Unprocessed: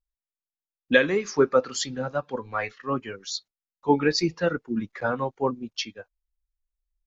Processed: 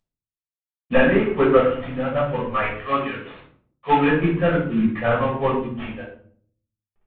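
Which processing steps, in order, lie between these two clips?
CVSD coder 16 kbps; 2.77–4.08 s: tilt EQ +2.5 dB/octave; simulated room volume 590 m³, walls furnished, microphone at 6 m; trim -1 dB

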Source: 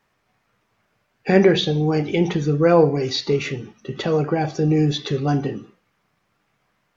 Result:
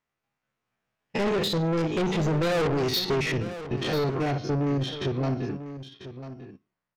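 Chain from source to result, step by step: spectrogram pixelated in time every 50 ms; Doppler pass-by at 2.69 s, 31 m/s, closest 25 m; gate -41 dBFS, range -15 dB; in parallel at -1 dB: compression, threshold -36 dBFS, peak gain reduction 23.5 dB; on the sum: saturation -28 dBFS, distortion -3 dB; transient shaper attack +2 dB, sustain -4 dB; delay 994 ms -12.5 dB; trim +5 dB

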